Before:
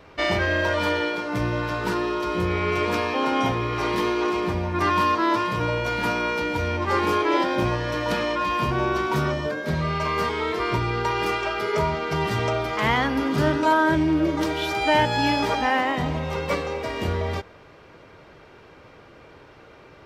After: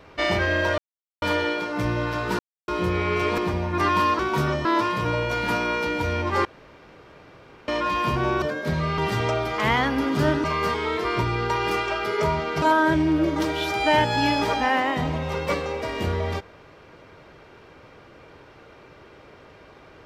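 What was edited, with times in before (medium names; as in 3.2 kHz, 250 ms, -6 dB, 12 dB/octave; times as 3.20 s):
0.78 s: insert silence 0.44 s
1.95–2.24 s: mute
2.94–4.39 s: delete
7.00–8.23 s: room tone
8.97–9.43 s: move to 5.20 s
12.17–13.63 s: move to 9.99 s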